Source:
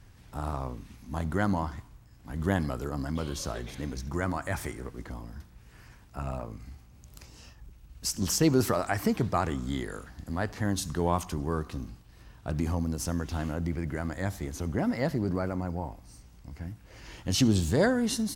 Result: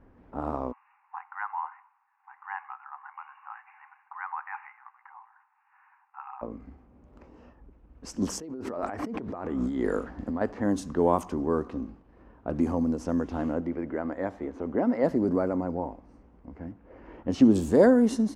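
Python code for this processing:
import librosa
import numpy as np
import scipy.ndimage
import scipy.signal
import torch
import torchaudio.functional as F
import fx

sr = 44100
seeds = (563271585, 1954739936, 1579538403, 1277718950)

y = fx.brickwall_bandpass(x, sr, low_hz=760.0, high_hz=2900.0, at=(0.71, 6.41), fade=0.02)
y = fx.over_compress(y, sr, threshold_db=-36.0, ratio=-1.0, at=(8.4, 10.41))
y = fx.bass_treble(y, sr, bass_db=-7, treble_db=-5, at=(13.6, 15.04))
y = fx.lowpass(y, sr, hz=2900.0, slope=6, at=(16.71, 17.54), fade=0.02)
y = fx.env_lowpass(y, sr, base_hz=1800.0, full_db=-21.5)
y = fx.graphic_eq_10(y, sr, hz=(125, 250, 500, 1000, 4000), db=(-8, 11, 9, 5, -7))
y = y * 10.0 ** (-4.0 / 20.0)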